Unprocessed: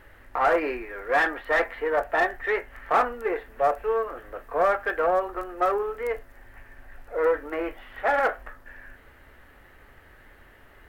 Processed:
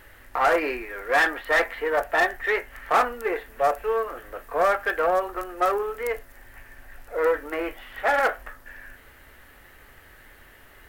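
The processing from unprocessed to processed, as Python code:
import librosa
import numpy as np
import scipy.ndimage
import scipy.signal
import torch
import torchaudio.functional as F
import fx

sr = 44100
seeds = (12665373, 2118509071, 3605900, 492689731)

y = fx.high_shelf(x, sr, hz=3100.0, db=11.5)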